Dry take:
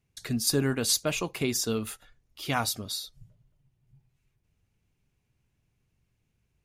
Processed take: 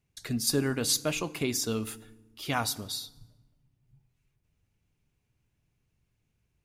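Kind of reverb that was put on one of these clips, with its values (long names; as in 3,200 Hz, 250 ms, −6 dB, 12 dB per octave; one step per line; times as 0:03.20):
feedback delay network reverb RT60 1.1 s, low-frequency decay 1.5×, high-frequency decay 0.75×, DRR 17 dB
level −1.5 dB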